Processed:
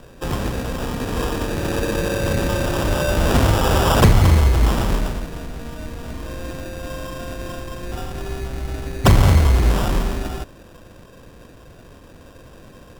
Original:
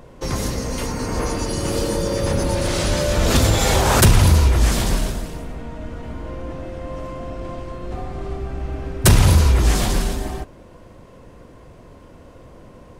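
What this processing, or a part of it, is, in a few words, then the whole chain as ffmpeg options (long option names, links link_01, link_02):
crushed at another speed: -af "asetrate=35280,aresample=44100,acrusher=samples=26:mix=1:aa=0.000001,asetrate=55125,aresample=44100"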